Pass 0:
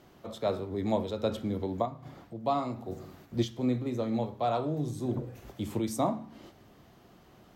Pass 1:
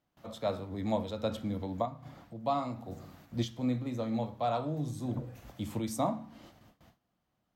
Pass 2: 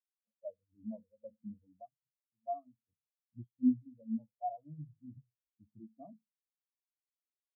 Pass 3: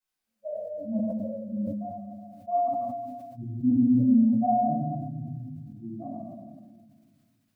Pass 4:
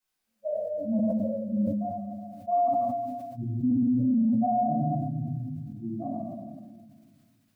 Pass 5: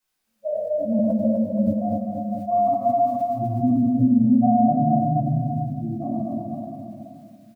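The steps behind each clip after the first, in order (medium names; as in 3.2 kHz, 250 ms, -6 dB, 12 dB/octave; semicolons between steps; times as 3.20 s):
gate with hold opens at -46 dBFS; peaking EQ 390 Hz -12 dB 0.3 oct; trim -1.5 dB
in parallel at 0 dB: peak limiter -25 dBFS, peak gain reduction 6.5 dB; on the sum: feedback comb 170 Hz, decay 0.69 s, harmonics odd, mix 60%; spectral contrast expander 4:1; trim +3.5 dB
simulated room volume 1000 m³, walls mixed, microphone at 7.7 m; decay stretcher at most 28 dB/s
peak limiter -23 dBFS, peak gain reduction 10.5 dB; trim +4 dB
bouncing-ball echo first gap 250 ms, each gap 0.9×, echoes 5; trim +4.5 dB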